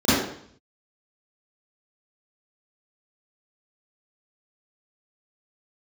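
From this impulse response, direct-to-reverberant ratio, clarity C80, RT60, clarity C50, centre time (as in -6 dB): -13.5 dB, 1.0 dB, 0.60 s, -4.0 dB, 88 ms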